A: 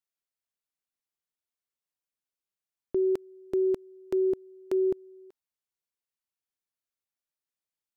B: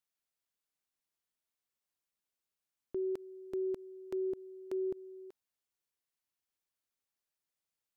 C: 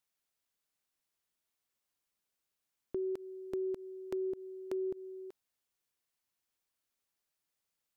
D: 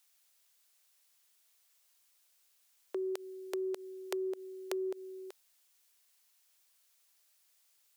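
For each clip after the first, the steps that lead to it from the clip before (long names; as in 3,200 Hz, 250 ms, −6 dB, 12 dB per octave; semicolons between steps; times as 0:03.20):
brickwall limiter −32 dBFS, peak gain reduction 11 dB; level +1 dB
downward compressor, threshold −37 dBFS, peak gain reduction 4.5 dB; level +3.5 dB
high-pass filter 450 Hz 24 dB per octave; high-shelf EQ 2,100 Hz +10 dB; level +6.5 dB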